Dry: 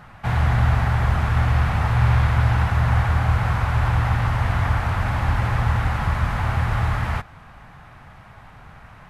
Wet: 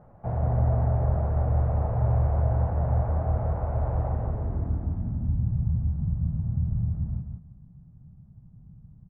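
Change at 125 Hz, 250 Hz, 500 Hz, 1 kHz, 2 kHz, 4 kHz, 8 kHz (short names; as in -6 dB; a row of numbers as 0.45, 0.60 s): -5.5 dB, -4.0 dB, -1.0 dB, -12.0 dB, under -25 dB, under -35 dB, n/a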